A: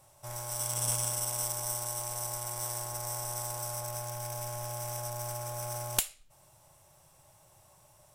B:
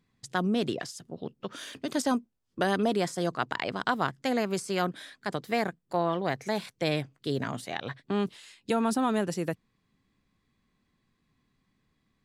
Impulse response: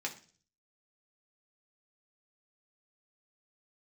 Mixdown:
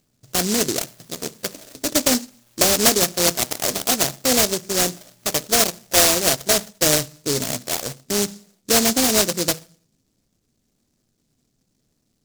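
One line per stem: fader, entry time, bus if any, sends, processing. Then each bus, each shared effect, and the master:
-11.0 dB, 0.00 s, send -20.5 dB, auto duck -11 dB, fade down 0.30 s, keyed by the second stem
+2.0 dB, 0.00 s, send -7.5 dB, resonant low-pass 650 Hz, resonance Q 4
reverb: on, RT60 0.40 s, pre-delay 3 ms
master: delay time shaken by noise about 5.8 kHz, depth 0.32 ms

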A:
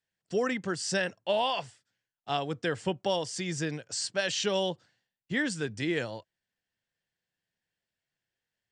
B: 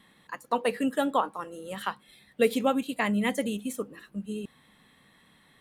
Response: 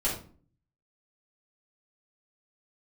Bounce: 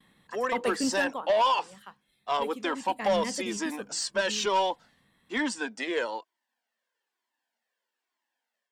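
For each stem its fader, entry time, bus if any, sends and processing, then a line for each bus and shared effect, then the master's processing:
-2.0 dB, 0.00 s, no send, elliptic high-pass 230 Hz, stop band 40 dB; peaking EQ 970 Hz +12.5 dB 0.61 oct; Shepard-style flanger falling 1.1 Hz
0.94 s -4 dB -> 1.39 s -15.5 dB -> 2.67 s -15.5 dB -> 3.04 s -7.5 dB, 0.00 s, no send, gate with hold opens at -51 dBFS; bass shelf 180 Hz +7 dB; auto duck -10 dB, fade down 1.20 s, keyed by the first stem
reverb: none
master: level rider gain up to 9 dB; saturation -18.5 dBFS, distortion -13 dB

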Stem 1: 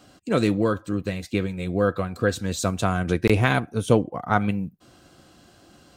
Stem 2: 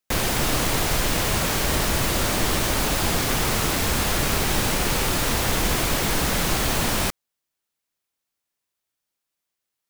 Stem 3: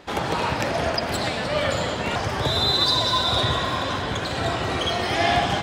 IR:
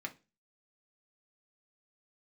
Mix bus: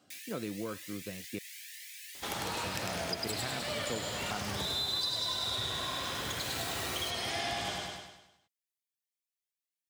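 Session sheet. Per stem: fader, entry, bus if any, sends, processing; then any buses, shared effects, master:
-13.5 dB, 0.00 s, muted 1.39–2.31 s, no send, no echo send, high-pass 120 Hz
-10.0 dB, 0.00 s, send -13.5 dB, no echo send, steep high-pass 1.7 kHz 96 dB/octave; treble shelf 5.5 kHz +4 dB; Shepard-style flanger rising 1.1 Hz; auto duck -13 dB, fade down 0.20 s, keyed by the first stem
+2.0 dB, 2.15 s, no send, echo send -3.5 dB, pre-emphasis filter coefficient 0.8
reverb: on, pre-delay 3 ms
echo: feedback delay 101 ms, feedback 49%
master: compression 3:1, threshold -34 dBFS, peak gain reduction 11.5 dB

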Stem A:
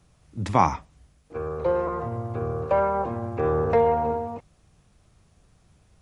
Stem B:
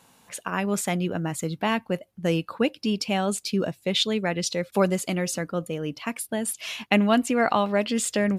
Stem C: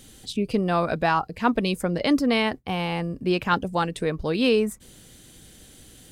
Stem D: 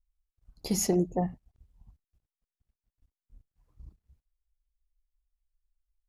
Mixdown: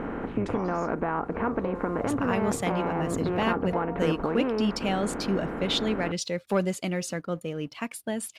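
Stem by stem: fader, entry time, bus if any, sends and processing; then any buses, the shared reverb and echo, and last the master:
-3.0 dB, 0.00 s, no send, reverb removal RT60 0.93 s; compression 10:1, threshold -30 dBFS, peak gain reduction 17 dB
-6.5 dB, 1.75 s, no send, waveshaping leveller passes 1
-4.5 dB, 0.00 s, no send, spectral levelling over time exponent 0.4; compression 4:1, threshold -20 dBFS, peak gain reduction 8 dB; low-pass 1.7 kHz 24 dB/octave
-11.5 dB, 0.00 s, no send, low-pass 7.1 kHz 24 dB/octave; auto duck -17 dB, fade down 1.85 s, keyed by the third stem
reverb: none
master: treble shelf 10 kHz -10 dB

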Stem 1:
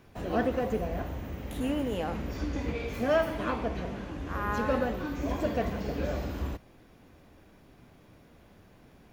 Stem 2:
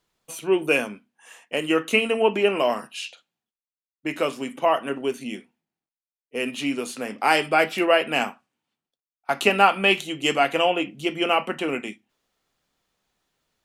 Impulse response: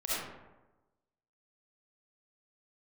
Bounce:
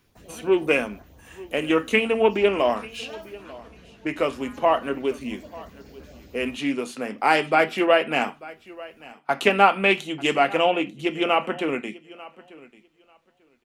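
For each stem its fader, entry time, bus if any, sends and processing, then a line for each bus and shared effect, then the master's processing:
-9.0 dB, 0.00 s, no send, no echo send, treble shelf 2.5 kHz +10.5 dB; LFO notch saw up 5.8 Hz 490–3600 Hz; auto duck -6 dB, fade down 0.20 s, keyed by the second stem
+1.0 dB, 0.00 s, no send, echo send -20.5 dB, treble shelf 3.9 kHz -7 dB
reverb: none
echo: feedback delay 892 ms, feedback 16%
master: loudspeaker Doppler distortion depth 0.12 ms

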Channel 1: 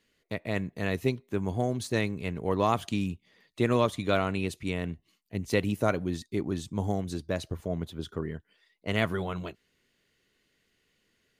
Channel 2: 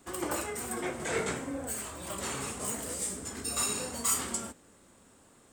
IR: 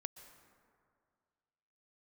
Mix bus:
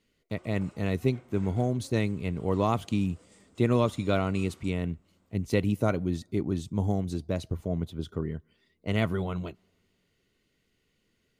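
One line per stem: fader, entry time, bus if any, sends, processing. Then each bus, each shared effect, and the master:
-3.5 dB, 0.00 s, send -24 dB, bass shelf 370 Hz +7.5 dB
-13.0 dB, 0.30 s, send -14 dB, upward compressor, threshold -44 dBFS; low-pass 5.1 kHz 12 dB/octave; auto duck -9 dB, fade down 0.55 s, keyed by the first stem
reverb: on, RT60 2.1 s, pre-delay 113 ms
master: band-stop 1.7 kHz, Q 9.7

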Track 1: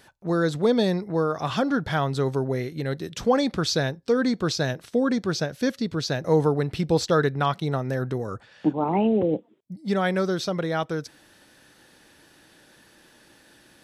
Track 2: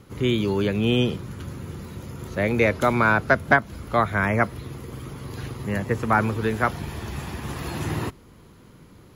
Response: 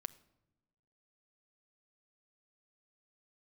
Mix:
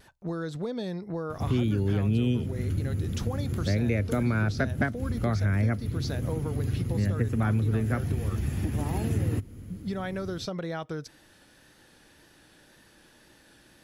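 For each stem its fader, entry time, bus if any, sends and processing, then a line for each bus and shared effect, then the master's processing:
-3.0 dB, 0.00 s, no send, compression 5:1, threshold -28 dBFS, peak gain reduction 12.5 dB; vibrato 1.9 Hz 37 cents
-2.0 dB, 1.30 s, no send, fifteen-band graphic EQ 100 Hz +10 dB, 250 Hz +7 dB, 1 kHz -12 dB, 4 kHz -5 dB, 10 kHz +5 dB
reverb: none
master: bass shelf 90 Hz +10 dB; compression 2.5:1, threshold -26 dBFS, peak gain reduction 10.5 dB

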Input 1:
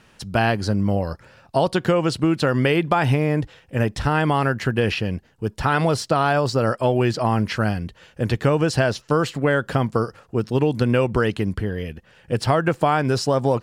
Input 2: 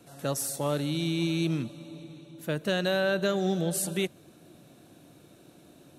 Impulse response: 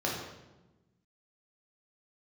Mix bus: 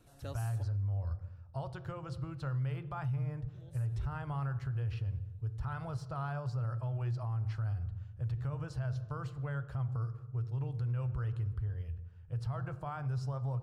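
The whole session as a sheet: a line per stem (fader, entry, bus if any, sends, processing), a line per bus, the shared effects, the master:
-4.0 dB, 0.00 s, send -19 dB, FFT filter 120 Hz 0 dB, 210 Hz -30 dB, 1.3 kHz -16 dB, 1.8 kHz -24 dB
-11.0 dB, 0.00 s, muted 0.63–3.54 s, no send, auto duck -19 dB, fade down 1.30 s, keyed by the first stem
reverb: on, RT60 1.1 s, pre-delay 3 ms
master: peak limiter -29 dBFS, peak gain reduction 10.5 dB

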